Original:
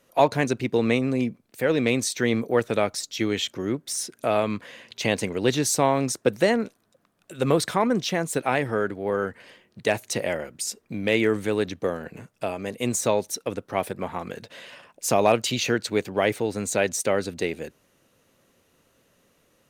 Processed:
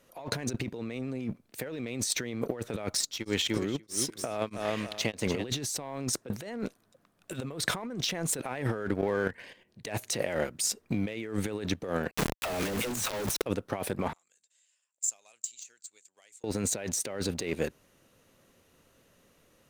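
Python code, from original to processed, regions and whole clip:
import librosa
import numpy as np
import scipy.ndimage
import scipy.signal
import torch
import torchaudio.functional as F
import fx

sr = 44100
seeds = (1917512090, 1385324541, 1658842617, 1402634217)

y = fx.chain(x, sr, fx.echo_feedback(ms=295, feedback_pct=29, wet_db=-11.0),
    fx.tremolo_abs(hz=1.6), at=(2.94, 5.46))
y = fx.chain(y, sr, fx.level_steps(step_db=10),
    fx.dynamic_eq(hz=2000.0, q=1.2, threshold_db=-51.0, ratio=4.0, max_db=6),
    fx.notch(hz=1300.0, q=5.6), at=(9.01, 9.88))
y = fx.chain(y, sr, fx.low_shelf(hz=100.0, db=-5.0),
    fx.dispersion(late='lows', ms=84.0, hz=370.0),
    fx.quant_companded(bits=2), at=(12.11, 13.42))
y = fx.chain(y, sr, fx.transient(attack_db=9, sustain_db=5),
    fx.bandpass_q(hz=7400.0, q=17.0), at=(14.13, 16.44))
y = fx.leveller(y, sr, passes=1)
y = fx.low_shelf(y, sr, hz=65.0, db=6.5)
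y = fx.over_compress(y, sr, threshold_db=-28.0, ratio=-1.0)
y = y * librosa.db_to_amplitude(-5.0)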